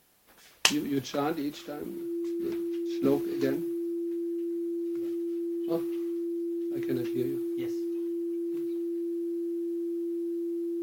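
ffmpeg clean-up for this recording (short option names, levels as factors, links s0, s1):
-af "bandreject=f=340:w=30"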